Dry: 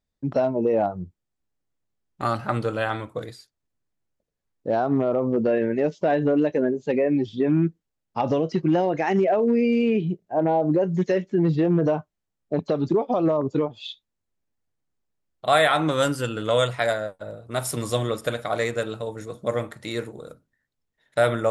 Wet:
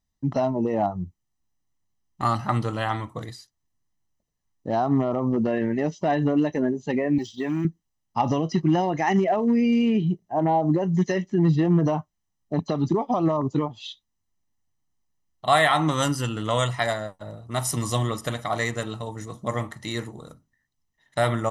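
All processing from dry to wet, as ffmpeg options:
-filter_complex "[0:a]asettb=1/sr,asplit=3[a][b][c];[a]atrim=end=7.184[d];[b]atrim=start=7.18:end=7.65,asetpts=PTS-STARTPTS,afade=t=in:d=0.004:c=qsin,afade=t=out:st=0.466:d=0.004:c=qsin,aemphasis=mode=production:type=riaa,agate=range=-33dB:threshold=-35dB:ratio=3:release=100:detection=peak[e];[c]atrim=start=7.646[f];[d][e]acrossfade=d=0.004:c1=hsin:c2=qsin[g];[g][f]acrossfade=d=0.004:c1=qsin:c2=hsin,equalizer=f=6k:w=5.4:g=8,bandreject=f=2.2k:w=20,aecho=1:1:1:0.59"

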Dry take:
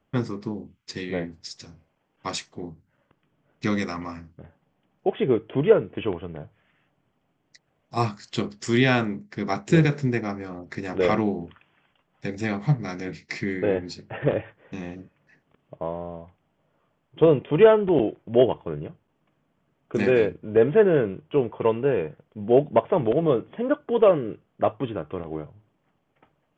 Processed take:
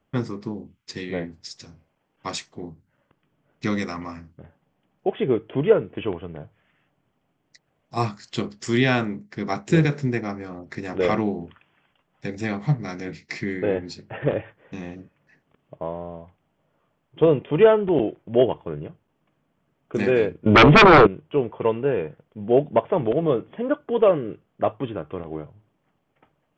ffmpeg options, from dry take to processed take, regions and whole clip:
-filter_complex "[0:a]asettb=1/sr,asplit=3[a][b][c];[a]atrim=end=20.464[d];[b]atrim=start=20.46:end=21.07,asetpts=PTS-STARTPTS,afade=t=in:d=0.004:c=qsin,afade=t=out:st=0.606:d=0.004:c=qsin,bandreject=f=1.6k:w=6.1,aeval=exprs='0.447*sin(PI/2*5.01*val(0)/0.447)':c=same[e];[c]atrim=start=21.066[f];[d][e]acrossfade=d=0.004:c1=hsin:c2=qsin[g];[g][f]acrossfade=d=0.004:c1=qsin:c2=hsin"

